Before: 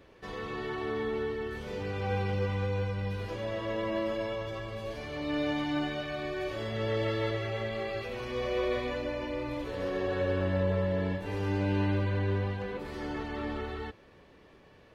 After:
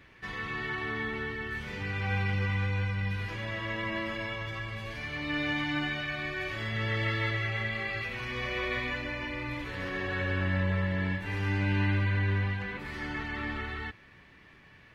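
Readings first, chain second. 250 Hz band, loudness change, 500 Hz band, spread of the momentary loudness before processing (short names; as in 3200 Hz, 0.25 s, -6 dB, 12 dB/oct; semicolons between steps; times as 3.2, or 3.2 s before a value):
-1.5 dB, +1.0 dB, -7.5 dB, 8 LU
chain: graphic EQ 125/500/2000 Hz +4/-10/+10 dB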